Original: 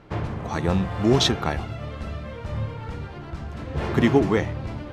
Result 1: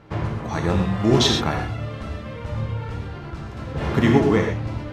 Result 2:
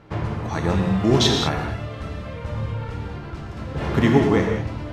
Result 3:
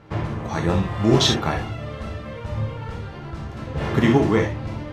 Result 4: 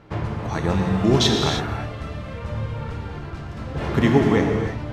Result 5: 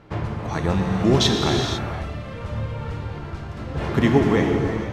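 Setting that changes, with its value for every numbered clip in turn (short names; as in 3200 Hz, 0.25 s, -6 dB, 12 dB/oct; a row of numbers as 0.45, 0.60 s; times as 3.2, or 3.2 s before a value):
non-linear reverb, gate: 150, 230, 90, 350, 530 ms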